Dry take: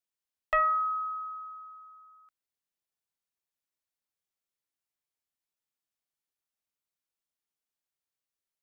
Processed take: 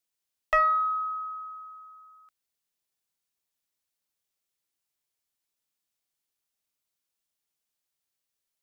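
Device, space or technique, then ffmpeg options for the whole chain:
exciter from parts: -filter_complex "[0:a]asplit=2[link_01][link_02];[link_02]highpass=2200,asoftclip=type=tanh:threshold=-32.5dB,volume=-6dB[link_03];[link_01][link_03]amix=inputs=2:normalize=0,volume=3.5dB"

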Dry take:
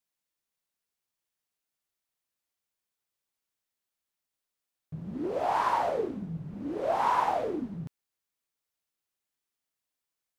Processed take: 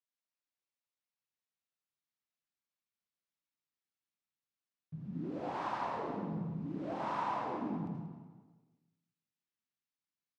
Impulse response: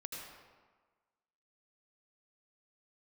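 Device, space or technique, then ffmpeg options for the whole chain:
supermarket ceiling speaker: -filter_complex "[0:a]highpass=210,lowpass=6000[link_01];[1:a]atrim=start_sample=2205[link_02];[link_01][link_02]afir=irnorm=-1:irlink=0,asubboost=boost=9.5:cutoff=160,aecho=1:1:185|370|555:0.251|0.0779|0.0241,volume=-6dB"

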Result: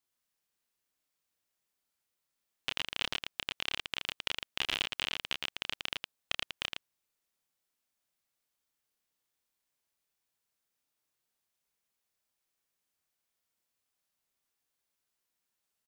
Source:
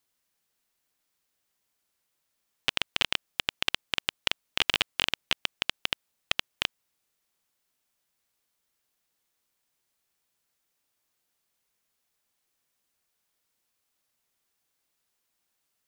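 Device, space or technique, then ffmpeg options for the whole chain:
slapback doubling: -filter_complex "[0:a]asplit=3[link_01][link_02][link_03];[link_02]adelay=30,volume=-5dB[link_04];[link_03]adelay=113,volume=-4.5dB[link_05];[link_01][link_04][link_05]amix=inputs=3:normalize=0,volume=-8.5dB"

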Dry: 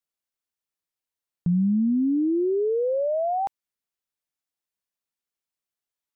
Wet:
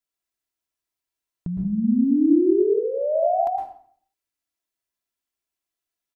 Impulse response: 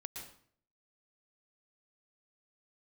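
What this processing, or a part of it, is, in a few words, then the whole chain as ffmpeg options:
microphone above a desk: -filter_complex "[0:a]aecho=1:1:3:0.5[link_01];[1:a]atrim=start_sample=2205[link_02];[link_01][link_02]afir=irnorm=-1:irlink=0,volume=4.5dB"

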